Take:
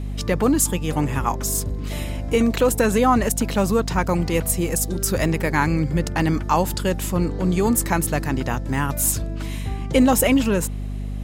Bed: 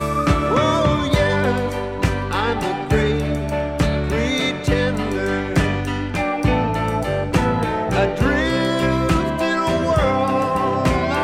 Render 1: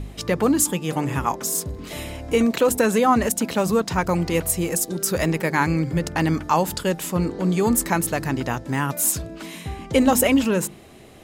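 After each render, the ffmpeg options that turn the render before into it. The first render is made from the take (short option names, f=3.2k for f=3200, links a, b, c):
-af "bandreject=f=50:t=h:w=4,bandreject=f=100:t=h:w=4,bandreject=f=150:t=h:w=4,bandreject=f=200:t=h:w=4,bandreject=f=250:t=h:w=4,bandreject=f=300:t=h:w=4,bandreject=f=350:t=h:w=4"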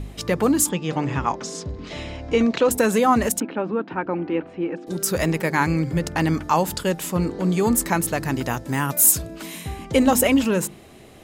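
-filter_complex "[0:a]asettb=1/sr,asplit=3[a][b][c];[a]atrim=end=0.694[d];[b]atrim=start=0.69:end=2.71,asetpts=PTS-STARTPTS,afade=t=in:d=0.004:c=qsin,afade=t=out:st=2.016:d=0.004:c=qsin,lowpass=f=5.9k:w=0.5412,lowpass=f=5.9k:w=1.3066[e];[c]atrim=start=2.706[f];[d][e]acrossfade=d=0.004:c1=hsin:c2=qsin[g];[g][f]acrossfade=d=0.004:c1=qsin:c2=hsin,asettb=1/sr,asplit=3[h][i][j];[h]atrim=end=3.404[k];[i]atrim=start=3.4:end=4.87,asetpts=PTS-STARTPTS,afade=t=in:d=0.004:c=qsin,afade=t=out:st=1.466:d=0.004:c=qsin,highpass=290,equalizer=f=300:t=q:w=4:g=9,equalizer=f=460:t=q:w=4:g=-4,equalizer=f=660:t=q:w=4:g=-6,equalizer=f=1.1k:t=q:w=4:g=-7,equalizer=f=2k:t=q:w=4:g=-8,lowpass=f=2.3k:w=0.5412,lowpass=f=2.3k:w=1.3066[l];[j]atrim=start=4.866[m];[k][l]acrossfade=d=0.004:c1=hsin:c2=qsin[n];[n][m]acrossfade=d=0.004:c1=qsin:c2=hsin,asettb=1/sr,asplit=3[o][p][q];[o]atrim=end=8.284[r];[p]atrim=start=8.28:end=9.85,asetpts=PTS-STARTPTS,afade=t=in:d=0.004:c=qsin,afade=t=out:st=1.566:d=0.004:c=qsin,highshelf=f=9.3k:g=11[s];[q]atrim=start=9.846[t];[r][s]acrossfade=d=0.004:c1=hsin:c2=qsin[u];[u][t]acrossfade=d=0.004:c1=qsin:c2=hsin"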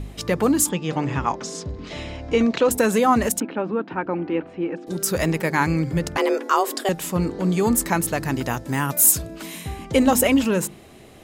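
-filter_complex "[0:a]asettb=1/sr,asplit=3[a][b][c];[a]atrim=end=6.174[d];[b]atrim=start=6.17:end=6.89,asetpts=PTS-STARTPTS,afade=t=in:d=0.004:c=qsin,afade=t=out:st=0.716:d=0.004:c=qsin,afreqshift=200[e];[c]atrim=start=6.886[f];[d][e]acrossfade=d=0.004:c1=hsin:c2=qsin[g];[g][f]acrossfade=d=0.004:c1=qsin:c2=hsin"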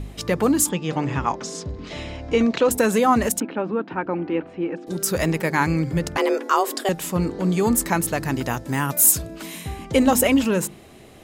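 -af anull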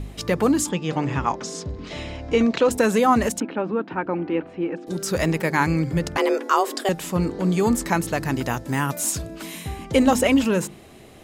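-filter_complex "[0:a]acrossover=split=7600[a][b];[b]acompressor=threshold=-37dB:ratio=4:attack=1:release=60[c];[a][c]amix=inputs=2:normalize=0"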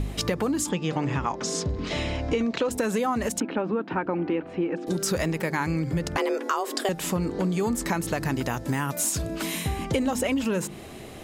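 -filter_complex "[0:a]asplit=2[a][b];[b]alimiter=limit=-14.5dB:level=0:latency=1,volume=-2dB[c];[a][c]amix=inputs=2:normalize=0,acompressor=threshold=-23dB:ratio=6"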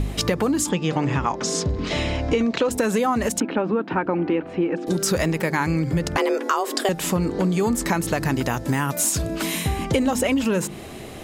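-af "volume=4.5dB"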